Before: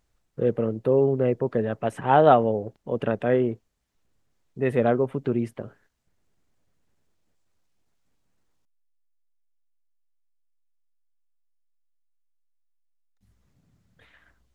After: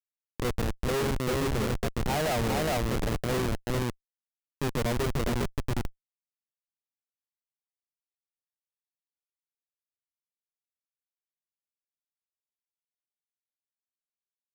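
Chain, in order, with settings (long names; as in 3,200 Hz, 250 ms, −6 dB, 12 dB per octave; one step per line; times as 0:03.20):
high-pass filter 130 Hz 24 dB per octave
high-shelf EQ 2,200 Hz −8.5 dB
feedback echo with a high-pass in the loop 143 ms, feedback 82%, high-pass 550 Hz, level −21 dB
spectral peaks only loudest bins 32
multi-tap delay 411/857 ms −3/−15 dB
comparator with hysteresis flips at −22.5 dBFS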